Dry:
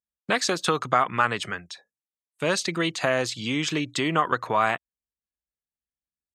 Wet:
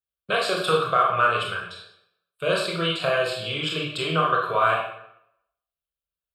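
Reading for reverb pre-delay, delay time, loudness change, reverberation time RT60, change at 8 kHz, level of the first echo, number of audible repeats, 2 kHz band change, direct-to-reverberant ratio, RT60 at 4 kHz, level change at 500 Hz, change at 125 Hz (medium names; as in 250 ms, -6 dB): 20 ms, no echo, +2.0 dB, 0.75 s, -8.5 dB, no echo, no echo, +1.5 dB, -3.0 dB, 0.60 s, +3.0 dB, +1.0 dB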